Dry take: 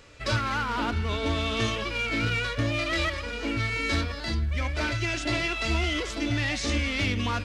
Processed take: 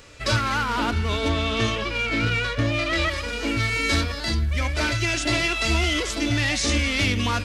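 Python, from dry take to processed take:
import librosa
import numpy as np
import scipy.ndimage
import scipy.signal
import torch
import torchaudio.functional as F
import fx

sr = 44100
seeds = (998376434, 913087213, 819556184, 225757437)

y = fx.high_shelf(x, sr, hz=6800.0, db=fx.steps((0.0, 8.0), (1.28, -3.5), (3.09, 11.0)))
y = F.gain(torch.from_numpy(y), 4.0).numpy()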